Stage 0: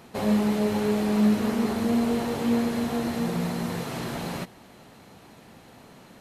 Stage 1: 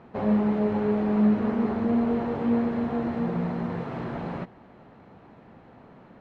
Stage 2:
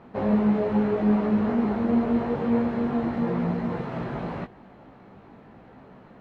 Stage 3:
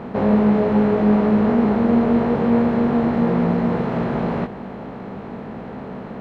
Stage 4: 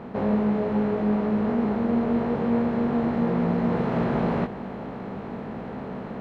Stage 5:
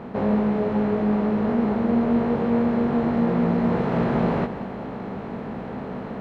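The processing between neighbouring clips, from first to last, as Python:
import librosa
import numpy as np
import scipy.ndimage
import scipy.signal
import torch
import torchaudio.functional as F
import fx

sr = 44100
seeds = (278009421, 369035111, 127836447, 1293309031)

y1 = scipy.signal.sosfilt(scipy.signal.butter(2, 1600.0, 'lowpass', fs=sr, output='sos'), x)
y2 = fx.chorus_voices(y1, sr, voices=4, hz=1.1, base_ms=18, depth_ms=3.0, mix_pct=40)
y2 = y2 * 10.0 ** (4.5 / 20.0)
y3 = fx.bin_compress(y2, sr, power=0.6)
y3 = y3 * 10.0 ** (4.0 / 20.0)
y4 = fx.rider(y3, sr, range_db=4, speed_s=0.5)
y4 = y4 * 10.0 ** (-6.0 / 20.0)
y5 = y4 + 10.0 ** (-14.0 / 20.0) * np.pad(y4, (int(192 * sr / 1000.0), 0))[:len(y4)]
y5 = y5 * 10.0 ** (2.0 / 20.0)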